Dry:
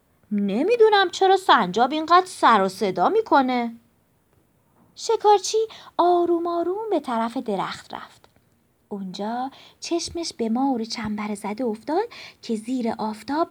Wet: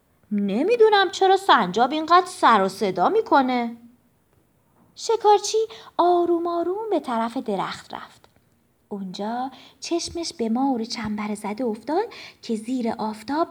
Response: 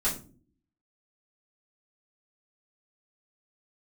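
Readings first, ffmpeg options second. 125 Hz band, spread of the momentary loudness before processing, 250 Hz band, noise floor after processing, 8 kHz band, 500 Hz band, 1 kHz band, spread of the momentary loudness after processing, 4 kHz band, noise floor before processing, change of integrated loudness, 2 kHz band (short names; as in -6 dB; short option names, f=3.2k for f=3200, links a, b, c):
0.0 dB, 14 LU, 0.0 dB, -63 dBFS, 0.0 dB, 0.0 dB, 0.0 dB, 14 LU, 0.0 dB, -63 dBFS, 0.0 dB, 0.0 dB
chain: -filter_complex "[0:a]asplit=2[a][b];[1:a]atrim=start_sample=2205,adelay=76[c];[b][c]afir=irnorm=-1:irlink=0,volume=-31.5dB[d];[a][d]amix=inputs=2:normalize=0"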